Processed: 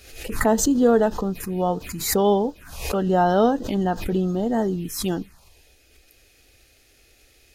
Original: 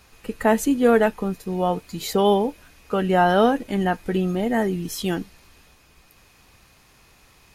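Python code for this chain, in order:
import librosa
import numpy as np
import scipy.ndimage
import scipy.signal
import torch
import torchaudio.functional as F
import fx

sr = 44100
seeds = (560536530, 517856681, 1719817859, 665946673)

y = fx.env_phaser(x, sr, low_hz=160.0, high_hz=2300.0, full_db=-20.0)
y = fx.pre_swell(y, sr, db_per_s=74.0)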